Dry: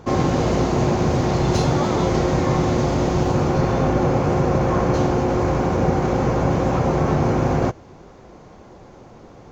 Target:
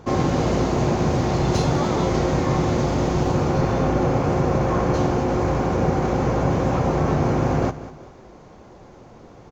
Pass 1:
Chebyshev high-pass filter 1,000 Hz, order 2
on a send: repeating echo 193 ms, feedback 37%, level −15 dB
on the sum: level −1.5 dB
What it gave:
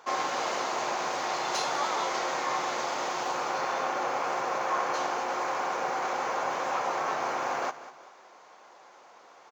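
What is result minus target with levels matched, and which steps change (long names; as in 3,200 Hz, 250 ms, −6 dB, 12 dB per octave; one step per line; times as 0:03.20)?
1,000 Hz band +6.5 dB
remove: Chebyshev high-pass filter 1,000 Hz, order 2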